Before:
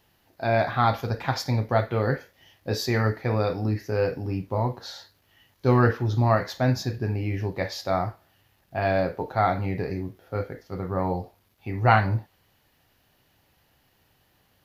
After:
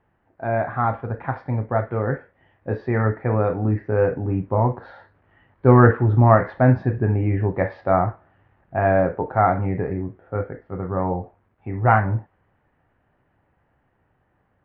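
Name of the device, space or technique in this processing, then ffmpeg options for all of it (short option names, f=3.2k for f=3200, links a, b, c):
action camera in a waterproof case: -af "lowpass=f=1.8k:w=0.5412,lowpass=f=1.8k:w=1.3066,dynaudnorm=f=970:g=7:m=11.5dB" -ar 16000 -c:a aac -b:a 64k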